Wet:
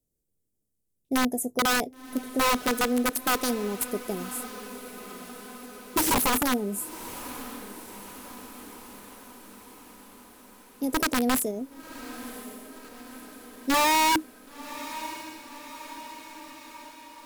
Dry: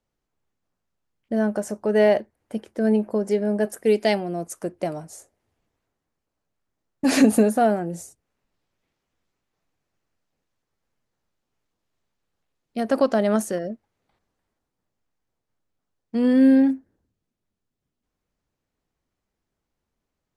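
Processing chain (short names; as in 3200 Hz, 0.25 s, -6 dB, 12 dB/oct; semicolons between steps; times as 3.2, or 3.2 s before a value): EQ curve 120 Hz 0 dB, 390 Hz -1 dB, 1100 Hz -28 dB, 8900 Hz +10 dB; limiter -15.5 dBFS, peak gain reduction 8.5 dB; wrapped overs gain 18 dB; varispeed +18%; diffused feedback echo 1.046 s, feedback 62%, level -14 dB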